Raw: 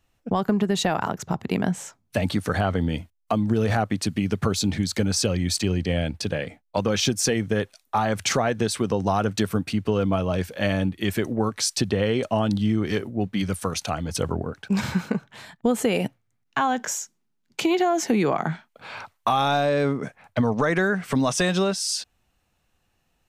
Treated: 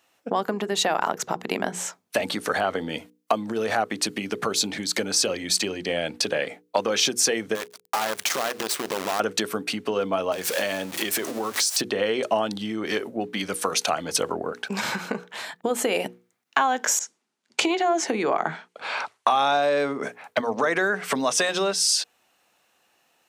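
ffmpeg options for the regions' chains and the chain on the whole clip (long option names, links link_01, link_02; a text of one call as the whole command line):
ffmpeg -i in.wav -filter_complex "[0:a]asettb=1/sr,asplit=3[link_01][link_02][link_03];[link_01]atrim=end=7.554[link_04];[link_02]atrim=start=7.55:end=9.2,asetpts=PTS-STARTPTS,afade=type=in:duration=0.004:curve=qsin,afade=type=out:start_time=1.646:duration=0.004:curve=qsin,acompressor=threshold=-29dB:ratio=6:attack=3.2:release=140:knee=1:detection=peak,acrusher=bits=6:dc=4:mix=0:aa=0.000001[link_05];[link_03]atrim=start=9.196[link_06];[link_04][link_05]acrossfade=duration=0.004:curve1=hsin:curve2=qsin[link_07];[link_07][link_06]acrossfade=duration=0.004:curve1=qsin:curve2=hsin,asettb=1/sr,asplit=3[link_08][link_09][link_10];[link_08]atrim=end=10.324[link_11];[link_09]atrim=start=10.32:end=11.81,asetpts=PTS-STARTPTS,afade=type=in:duration=0.004:curve=qsin,afade=type=out:start_time=1.486:duration=0.004:curve=qsin,aeval=exprs='val(0)+0.5*0.0224*sgn(val(0))':channel_layout=same,bass=frequency=250:gain=-1,treble=frequency=4000:gain=6,acompressor=threshold=-28dB:ratio=5:attack=3.2:release=140:knee=1:detection=peak[link_12];[link_10]atrim=start=11.806[link_13];[link_11][link_12]acrossfade=duration=0.004:curve1=hsin:curve2=qsin[link_14];[link_14][link_13]acrossfade=duration=0.004:curve1=qsin:curve2=hsin,asettb=1/sr,asplit=3[link_15][link_16][link_17];[link_15]atrim=end=16.994[link_18];[link_16]atrim=start=16.99:end=19.63,asetpts=PTS-STARTPTS,afade=type=in:duration=0.004:curve=qsin,afade=type=out:start_time=2.636:duration=0.004:curve=qsin,lowpass=frequency=9900:width=0.5412,lowpass=frequency=9900:width=1.3066,adynamicequalizer=threshold=0.0178:dfrequency=2100:dqfactor=0.7:tfrequency=2100:tqfactor=0.7:attack=5:release=100:ratio=0.375:range=2:mode=cutabove:tftype=highshelf[link_19];[link_17]atrim=start=19.626[link_20];[link_18][link_19]acrossfade=duration=0.004:curve1=hsin:curve2=qsin[link_21];[link_21][link_20]acrossfade=duration=0.004:curve1=qsin:curve2=hsin,acompressor=threshold=-27dB:ratio=3,highpass=380,bandreject=frequency=60:width_type=h:width=6,bandreject=frequency=120:width_type=h:width=6,bandreject=frequency=180:width_type=h:width=6,bandreject=frequency=240:width_type=h:width=6,bandreject=frequency=300:width_type=h:width=6,bandreject=frequency=360:width_type=h:width=6,bandreject=frequency=420:width_type=h:width=6,bandreject=frequency=480:width_type=h:width=6,volume=8.5dB" out.wav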